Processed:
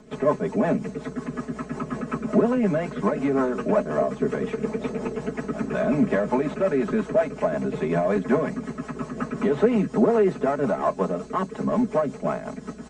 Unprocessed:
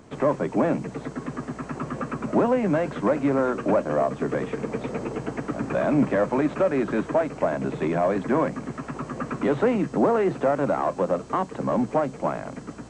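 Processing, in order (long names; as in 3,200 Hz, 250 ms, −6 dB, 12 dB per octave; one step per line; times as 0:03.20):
rotating-speaker cabinet horn 5.5 Hz
comb filter 4.7 ms, depth 90%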